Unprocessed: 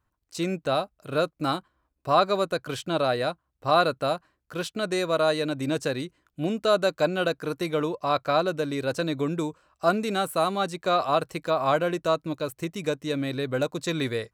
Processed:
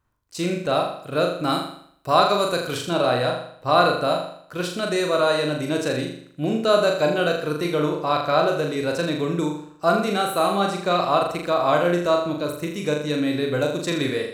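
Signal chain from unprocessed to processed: 1.49–2.76 high shelf 5900 Hz -> 4000 Hz +8 dB; flutter echo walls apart 6.9 m, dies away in 0.62 s; gain +2 dB

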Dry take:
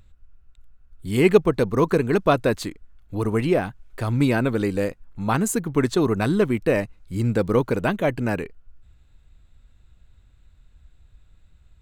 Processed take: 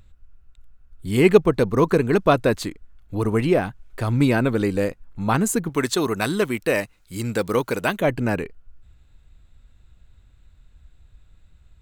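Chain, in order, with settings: 5.69–8.01 tilt +2.5 dB/oct; gain +1.5 dB

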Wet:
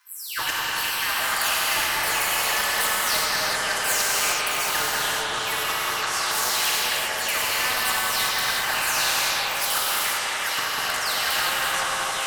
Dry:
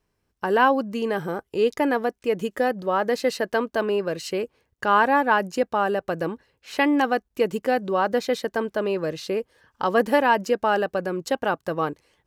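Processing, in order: spectral delay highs early, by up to 0.36 s; steep high-pass 1000 Hz 48 dB/oct; high shelf 5900 Hz +3.5 dB; AGC gain up to 9 dB; flipped gate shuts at -14 dBFS, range -28 dB; soft clip -21.5 dBFS, distortion -14 dB; on a send: analogue delay 0.195 s, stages 2048, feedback 69%, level -4.5 dB; on the sum: non-linear reverb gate 0.42 s flat, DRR -4.5 dB; echoes that change speed 0.636 s, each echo -6 st, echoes 2, each echo -6 dB; spectral compressor 2:1; gain +1.5 dB

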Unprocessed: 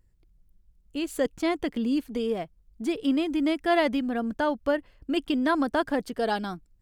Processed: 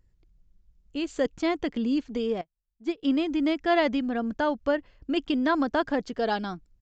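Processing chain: downsampling 16000 Hz; 2.41–3.03 upward expander 2.5:1, over -40 dBFS

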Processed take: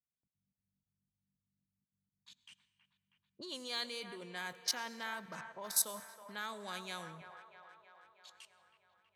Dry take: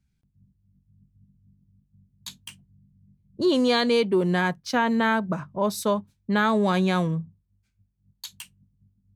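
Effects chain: level quantiser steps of 17 dB; tilt +4.5 dB/oct; low-pass opened by the level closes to 700 Hz, open at -34 dBFS; on a send: band-limited delay 0.321 s, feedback 65%, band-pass 1100 Hz, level -8.5 dB; on the sum: plate-style reverb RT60 1.6 s, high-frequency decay 0.65×, pre-delay 75 ms, DRR 17 dB; gain -7.5 dB

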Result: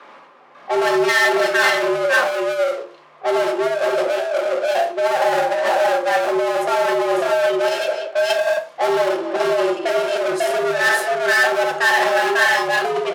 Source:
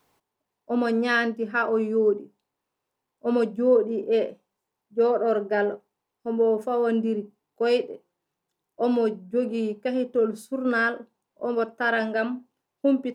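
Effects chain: tapped delay 70/76/258/547/549/581 ms -8/-8.5/-18.5/-4.5/-5/-4.5 dB; spectral repair 8.32–8.55, 270–1500 Hz before; negative-ratio compressor -21 dBFS, ratio -0.5; sample leveller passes 1; notch 760 Hz, Q 25; power-law curve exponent 0.5; low shelf 400 Hz -10.5 dB; low-pass opened by the level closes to 1700 Hz, open at -16 dBFS; frequency shift +150 Hz; on a send at -5 dB: bell 97 Hz -13 dB 0.98 oct + reverb RT60 0.40 s, pre-delay 4 ms

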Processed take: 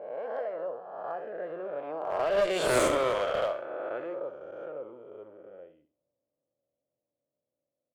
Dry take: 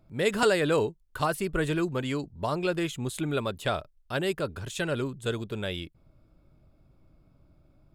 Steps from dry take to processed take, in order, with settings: spectral swells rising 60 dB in 2.06 s; Doppler pass-by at 2.75, 34 m/s, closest 2.7 m; weighting filter A; low-pass opened by the level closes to 560 Hz, open at -33.5 dBFS; bell 600 Hz +14.5 dB 0.97 oct; notch 3800 Hz, Q 12; in parallel at -1 dB: compressor, threshold -42 dBFS, peak gain reduction 18 dB; on the sum: one-sided clip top -29.5 dBFS; on a send: feedback echo 66 ms, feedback 29%, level -11.5 dB; on the sum: gain +4 dB

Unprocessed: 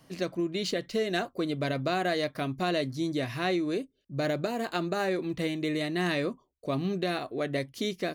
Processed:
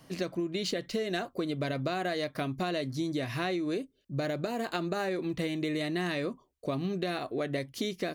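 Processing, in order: compressor, threshold -31 dBFS, peak gain reduction 7 dB; gain +2.5 dB

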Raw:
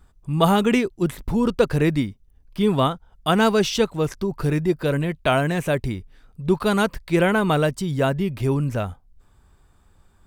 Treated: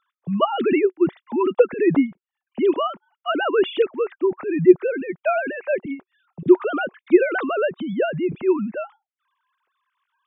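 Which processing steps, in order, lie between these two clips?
sine-wave speech; bell 370 Hz +5.5 dB 0.21 oct; gain -1.5 dB

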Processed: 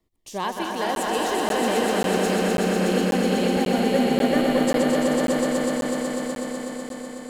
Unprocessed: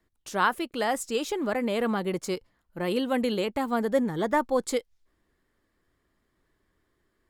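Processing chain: regenerating reverse delay 0.108 s, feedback 84%, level -6 dB; LFO notch saw down 0.39 Hz 720–1600 Hz; on a send: swelling echo 0.124 s, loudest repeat 5, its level -5 dB; on the sum: crackling interface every 0.54 s, samples 512, zero, from 0.95

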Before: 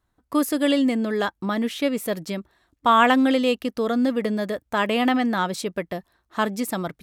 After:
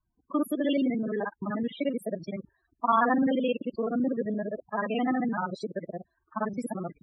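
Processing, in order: local time reversal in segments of 43 ms; loudest bins only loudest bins 16; gain -5.5 dB

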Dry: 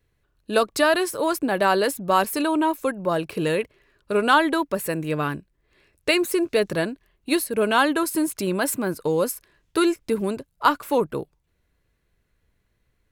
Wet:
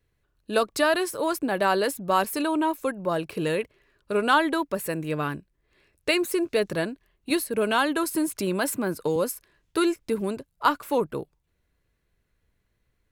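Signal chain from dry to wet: 7.3–9.16 three-band squash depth 40%; gain -3 dB

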